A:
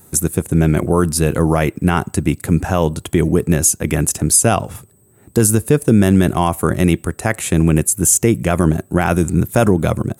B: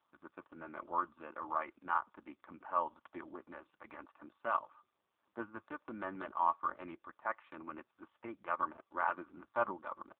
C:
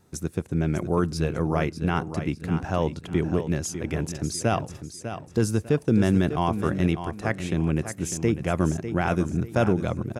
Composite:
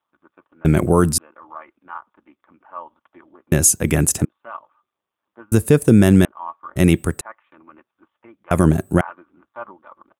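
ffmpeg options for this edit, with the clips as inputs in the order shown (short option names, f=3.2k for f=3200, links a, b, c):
-filter_complex "[0:a]asplit=5[a][b][c][d][e];[1:a]asplit=6[f][g][h][i][j][k];[f]atrim=end=0.652[l];[a]atrim=start=0.648:end=1.182[m];[g]atrim=start=1.178:end=3.522[n];[b]atrim=start=3.518:end=4.252[o];[h]atrim=start=4.248:end=5.522[p];[c]atrim=start=5.518:end=6.252[q];[i]atrim=start=6.248:end=6.762[r];[d]atrim=start=6.758:end=7.212[s];[j]atrim=start=7.208:end=8.512[t];[e]atrim=start=8.508:end=9.012[u];[k]atrim=start=9.008[v];[l][m]acrossfade=d=0.004:c1=hsin:c2=hsin[w];[w][n]acrossfade=d=0.004:c1=hsin:c2=hsin[x];[x][o]acrossfade=d=0.004:c1=hsin:c2=hsin[y];[y][p]acrossfade=d=0.004:c1=hsin:c2=hsin[z];[z][q]acrossfade=d=0.004:c1=hsin:c2=hsin[aa];[aa][r]acrossfade=d=0.004:c1=hsin:c2=hsin[ab];[ab][s]acrossfade=d=0.004:c1=hsin:c2=hsin[ac];[ac][t]acrossfade=d=0.004:c1=hsin:c2=hsin[ad];[ad][u]acrossfade=d=0.004:c1=hsin:c2=hsin[ae];[ae][v]acrossfade=d=0.004:c1=hsin:c2=hsin"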